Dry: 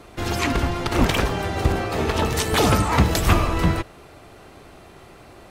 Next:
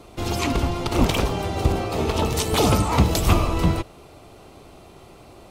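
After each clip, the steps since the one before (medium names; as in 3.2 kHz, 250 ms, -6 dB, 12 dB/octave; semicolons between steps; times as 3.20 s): peaking EQ 1.7 kHz -10 dB 0.58 oct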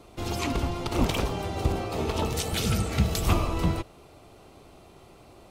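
spectral replace 2.40–3.18 s, 240–1300 Hz; trim -5.5 dB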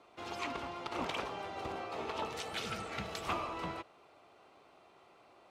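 band-pass filter 1.4 kHz, Q 0.67; trim -4.5 dB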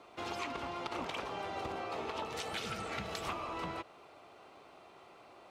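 compression, threshold -41 dBFS, peak gain reduction 10 dB; trim +5 dB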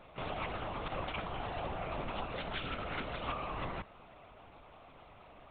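LPC vocoder at 8 kHz whisper; trim +1 dB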